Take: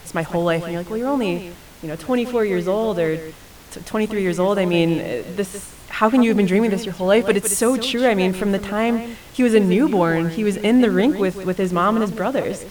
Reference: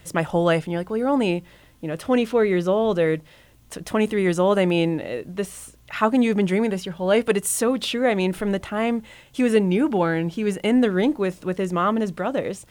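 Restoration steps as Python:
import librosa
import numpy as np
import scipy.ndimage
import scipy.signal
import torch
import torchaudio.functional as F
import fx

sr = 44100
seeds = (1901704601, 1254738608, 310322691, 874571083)

y = fx.noise_reduce(x, sr, print_start_s=3.31, print_end_s=3.81, reduce_db=11.0)
y = fx.fix_echo_inverse(y, sr, delay_ms=156, level_db=-12.5)
y = fx.fix_level(y, sr, at_s=4.73, step_db=-3.5)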